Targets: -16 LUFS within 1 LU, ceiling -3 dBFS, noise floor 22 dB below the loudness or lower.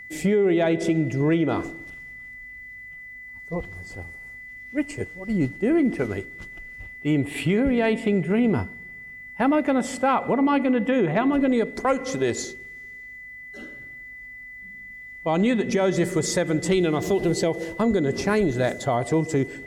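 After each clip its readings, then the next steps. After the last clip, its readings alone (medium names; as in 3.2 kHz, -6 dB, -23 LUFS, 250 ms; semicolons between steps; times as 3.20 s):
steady tone 2 kHz; tone level -38 dBFS; loudness -23.5 LUFS; peak level -11.0 dBFS; loudness target -16.0 LUFS
-> band-stop 2 kHz, Q 30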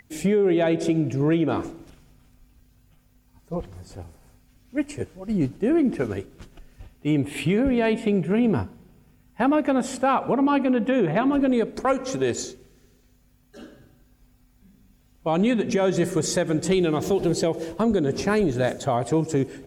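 steady tone not found; loudness -23.5 LUFS; peak level -11.5 dBFS; loudness target -16.0 LUFS
-> trim +7.5 dB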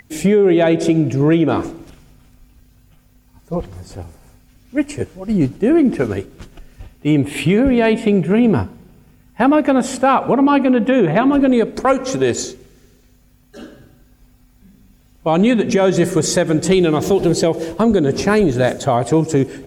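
loudness -16.0 LUFS; peak level -4.0 dBFS; noise floor -52 dBFS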